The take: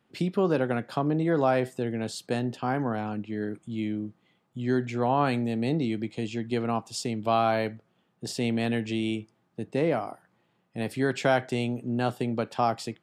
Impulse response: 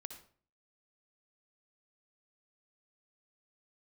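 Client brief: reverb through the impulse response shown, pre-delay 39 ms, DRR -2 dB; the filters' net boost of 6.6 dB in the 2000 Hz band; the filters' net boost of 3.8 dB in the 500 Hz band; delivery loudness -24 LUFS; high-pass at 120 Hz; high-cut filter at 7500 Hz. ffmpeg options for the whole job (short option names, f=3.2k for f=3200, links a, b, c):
-filter_complex "[0:a]highpass=120,lowpass=7.5k,equalizer=f=500:t=o:g=4.5,equalizer=f=2k:t=o:g=8.5,asplit=2[a][b];[1:a]atrim=start_sample=2205,adelay=39[c];[b][c]afir=irnorm=-1:irlink=0,volume=6.5dB[d];[a][d]amix=inputs=2:normalize=0,volume=-2.5dB"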